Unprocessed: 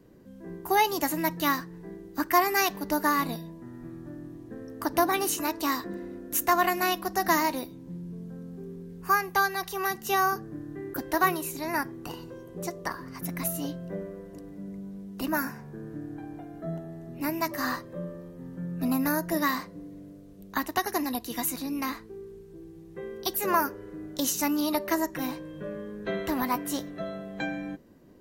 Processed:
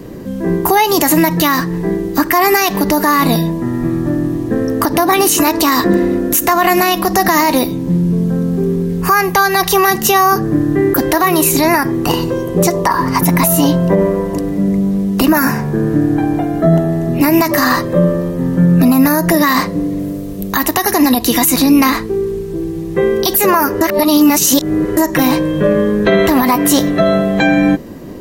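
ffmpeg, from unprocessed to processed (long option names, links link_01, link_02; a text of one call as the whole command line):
ffmpeg -i in.wav -filter_complex "[0:a]asettb=1/sr,asplit=3[link_01][link_02][link_03];[link_01]atrim=end=12.744[link_04];[link_02]atrim=start=12.74:end=14.37,asetpts=PTS-STARTPTS,afade=type=in:duration=0.004:curve=qsin,afade=type=out:start_time=1.626:duration=0.004:curve=qsin,equalizer=frequency=940:width_type=o:width=0.27:gain=12[link_05];[link_03]atrim=start=14.366[link_06];[link_04][link_05]acrossfade=duration=0.004:curve1=hsin:curve2=qsin[link_07];[link_07][link_06]acrossfade=duration=0.004:curve1=qsin:curve2=hsin,asettb=1/sr,asplit=3[link_08][link_09][link_10];[link_08]atrim=end=19.994[link_11];[link_09]atrim=start=19.99:end=20.93,asetpts=PTS-STARTPTS,afade=type=in:duration=0.004:curve=qsin,afade=type=out:start_time=0.936:duration=0.004:curve=qsin,highshelf=frequency=12000:gain=10[link_12];[link_10]atrim=start=20.926[link_13];[link_11][link_12]acrossfade=duration=0.004:curve1=hsin:curve2=qsin[link_14];[link_14][link_13]acrossfade=duration=0.004:curve1=qsin:curve2=hsin,asplit=3[link_15][link_16][link_17];[link_15]atrim=end=23.812[link_18];[link_16]atrim=start=23.808:end=24.972,asetpts=PTS-STARTPTS,areverse[link_19];[link_17]atrim=start=24.968[link_20];[link_18][link_19]acrossfade=duration=0.004:curve1=hsin:curve2=hsin[link_21];[link_21][link_20]acrossfade=duration=0.004:curve1=hsin:curve2=hsin,bandreject=frequency=1500:width=14,acompressor=threshold=-28dB:ratio=6,alimiter=level_in=26.5dB:limit=-1dB:release=50:level=0:latency=1,volume=-1dB" out.wav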